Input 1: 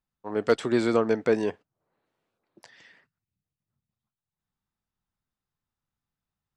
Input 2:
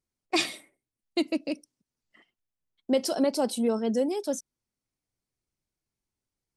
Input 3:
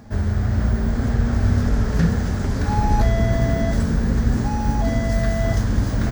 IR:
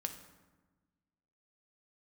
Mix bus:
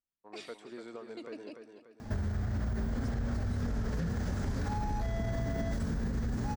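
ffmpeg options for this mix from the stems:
-filter_complex "[0:a]equalizer=f=100:t=o:w=1.4:g=-9.5,acompressor=threshold=0.0112:ratio=1.5,volume=0.178,asplit=2[s0][s1];[s1]volume=0.473[s2];[1:a]lowpass=8200,alimiter=limit=0.106:level=0:latency=1:release=76,volume=0.15,asplit=2[s3][s4];[s4]volume=0.188[s5];[2:a]alimiter=limit=0.141:level=0:latency=1:release=45,adelay=2000,volume=0.891,asplit=2[s6][s7];[s7]volume=0.0891[s8];[s2][s5][s8]amix=inputs=3:normalize=0,aecho=0:1:292|584|876|1168|1460|1752:1|0.42|0.176|0.0741|0.0311|0.0131[s9];[s0][s3][s6][s9]amix=inputs=4:normalize=0,acompressor=threshold=0.0316:ratio=6"

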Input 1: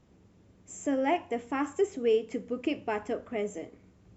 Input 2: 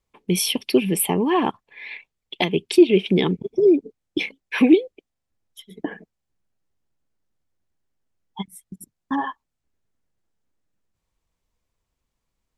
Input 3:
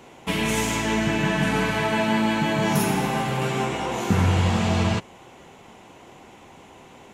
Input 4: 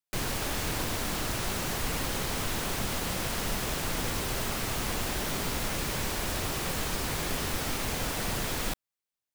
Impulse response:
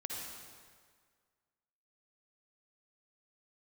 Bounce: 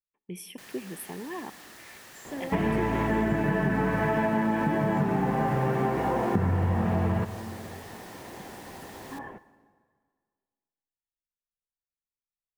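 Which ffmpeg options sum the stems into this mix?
-filter_complex "[0:a]adelay=1450,volume=0.355[s0];[1:a]agate=range=0.251:threshold=0.00891:ratio=16:detection=peak,equalizer=f=4200:t=o:w=0.69:g=-14.5,volume=0.112,asplit=2[s1][s2];[s2]volume=0.188[s3];[2:a]lowpass=1100,adelay=2250,volume=1.33,asplit=2[s4][s5];[s5]volume=0.224[s6];[3:a]highpass=f=490:p=1,adelay=450,volume=0.15,asplit=2[s7][s8];[s8]volume=0.133[s9];[4:a]atrim=start_sample=2205[s10];[s3][s6][s9]amix=inputs=3:normalize=0[s11];[s11][s10]afir=irnorm=-1:irlink=0[s12];[s0][s1][s4][s7][s12]amix=inputs=5:normalize=0,equalizer=f=1800:w=7.2:g=10,acompressor=threshold=0.0794:ratio=6"

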